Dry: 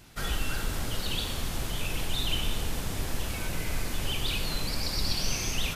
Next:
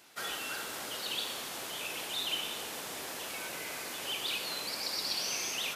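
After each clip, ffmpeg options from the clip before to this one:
ffmpeg -i in.wav -af "highpass=420,volume=-2dB" out.wav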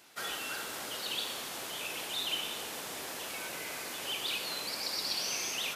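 ffmpeg -i in.wav -af anull out.wav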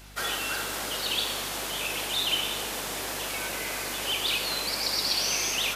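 ffmpeg -i in.wav -af "aeval=exprs='val(0)+0.00158*(sin(2*PI*50*n/s)+sin(2*PI*2*50*n/s)/2+sin(2*PI*3*50*n/s)/3+sin(2*PI*4*50*n/s)/4+sin(2*PI*5*50*n/s)/5)':channel_layout=same,volume=7.5dB" out.wav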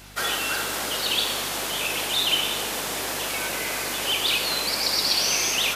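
ffmpeg -i in.wav -af "highpass=frequency=72:poles=1,volume=4.5dB" out.wav

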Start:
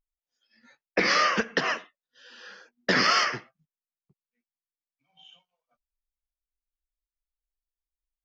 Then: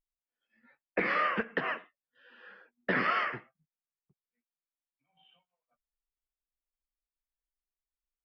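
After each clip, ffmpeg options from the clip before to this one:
ffmpeg -i in.wav -af "lowpass=frequency=2600:width=0.5412,lowpass=frequency=2600:width=1.3066,volume=-5.5dB" out.wav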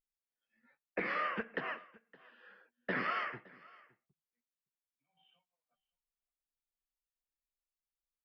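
ffmpeg -i in.wav -af "aecho=1:1:565:0.0708,volume=-6.5dB" out.wav

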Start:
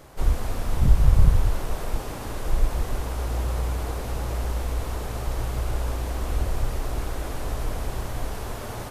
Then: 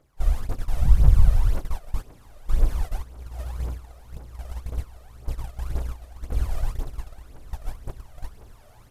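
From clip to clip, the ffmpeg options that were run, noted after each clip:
ffmpeg -i in.wav -af "agate=range=-15dB:threshold=-24dB:ratio=16:detection=peak,aphaser=in_gain=1:out_gain=1:delay=1.7:decay=0.63:speed=1.9:type=triangular,volume=-6.5dB" out.wav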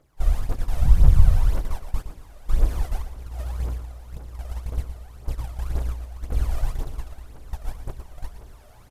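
ffmpeg -i in.wav -af "aecho=1:1:117|234|351|468:0.299|0.11|0.0409|0.0151,volume=1dB" out.wav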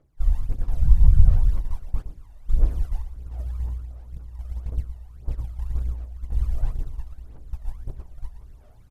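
ffmpeg -i in.wav -af "aphaser=in_gain=1:out_gain=1:delay=1.1:decay=0.5:speed=1.5:type=sinusoidal,lowshelf=frequency=430:gain=7.5,volume=-13dB" out.wav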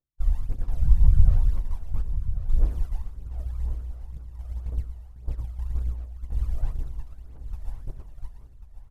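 ffmpeg -i in.wav -filter_complex "[0:a]agate=range=-26dB:threshold=-41dB:ratio=16:detection=peak,asplit=2[link_01][link_02];[link_02]aecho=0:1:1091|2182|3273:0.266|0.0665|0.0166[link_03];[link_01][link_03]amix=inputs=2:normalize=0,volume=-2.5dB" out.wav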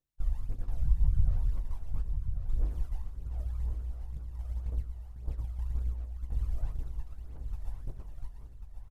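ffmpeg -i in.wav -filter_complex "[0:a]acompressor=threshold=-37dB:ratio=1.5,asplit=2[link_01][link_02];[link_02]adelay=20,volume=-12.5dB[link_03];[link_01][link_03]amix=inputs=2:normalize=0" out.wav

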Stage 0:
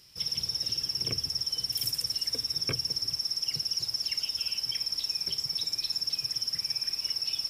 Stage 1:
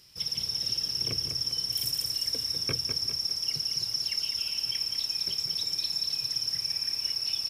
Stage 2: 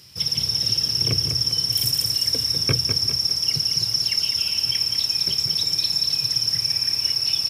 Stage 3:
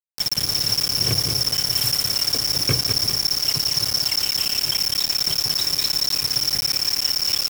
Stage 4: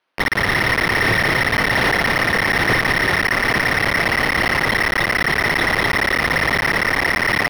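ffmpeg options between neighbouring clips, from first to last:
ffmpeg -i in.wav -af "aecho=1:1:201|402|603|804|1005:0.447|0.205|0.0945|0.0435|0.02" out.wav
ffmpeg -i in.wav -af "highpass=74,equalizer=frequency=100:width_type=o:width=1.6:gain=7.5,volume=8.5dB" out.wav
ffmpeg -i in.wav -af "acrusher=bits=3:mix=0:aa=0.000001" out.wav
ffmpeg -i in.wav -filter_complex "[0:a]acrusher=samples=6:mix=1:aa=0.000001,asplit=2[link_01][link_02];[link_02]highpass=frequency=720:poles=1,volume=34dB,asoftclip=type=tanh:threshold=-7dB[link_03];[link_01][link_03]amix=inputs=2:normalize=0,lowpass=frequency=1700:poles=1,volume=-6dB" out.wav

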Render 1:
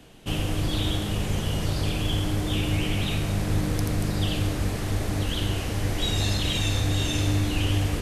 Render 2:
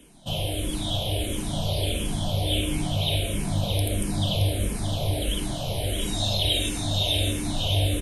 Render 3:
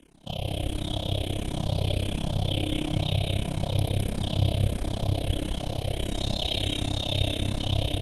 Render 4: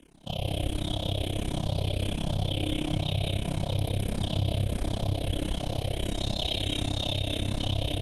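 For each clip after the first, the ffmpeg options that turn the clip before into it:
ffmpeg -i in.wav -filter_complex "[0:a]superequalizer=8b=2.24:10b=0.447:11b=0.447:13b=2.24:16b=3.16,asplit=2[link_01][link_02];[link_02]adelay=622,lowpass=frequency=5000:poles=1,volume=-5dB,asplit=2[link_03][link_04];[link_04]adelay=622,lowpass=frequency=5000:poles=1,volume=0.51,asplit=2[link_05][link_06];[link_06]adelay=622,lowpass=frequency=5000:poles=1,volume=0.51,asplit=2[link_07][link_08];[link_08]adelay=622,lowpass=frequency=5000:poles=1,volume=0.51,asplit=2[link_09][link_10];[link_10]adelay=622,lowpass=frequency=5000:poles=1,volume=0.51,asplit=2[link_11][link_12];[link_12]adelay=622,lowpass=frequency=5000:poles=1,volume=0.51[link_13];[link_03][link_05][link_07][link_09][link_11][link_13]amix=inputs=6:normalize=0[link_14];[link_01][link_14]amix=inputs=2:normalize=0,asplit=2[link_15][link_16];[link_16]afreqshift=-1.5[link_17];[link_15][link_17]amix=inputs=2:normalize=1" out.wav
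ffmpeg -i in.wav -filter_complex "[0:a]aemphasis=mode=reproduction:type=cd,tremolo=f=33:d=0.974,asplit=2[link_01][link_02];[link_02]aecho=0:1:157.4|209.9:0.282|0.708[link_03];[link_01][link_03]amix=inputs=2:normalize=0" out.wav
ffmpeg -i in.wav -af "alimiter=limit=-18dB:level=0:latency=1:release=53" out.wav

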